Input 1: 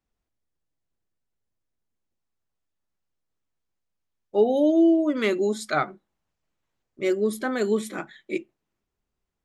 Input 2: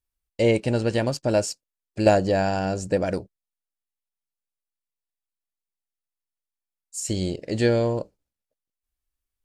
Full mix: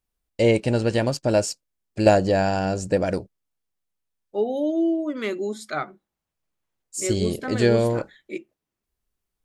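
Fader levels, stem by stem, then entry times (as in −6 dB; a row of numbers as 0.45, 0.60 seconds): −4.0, +1.5 decibels; 0.00, 0.00 seconds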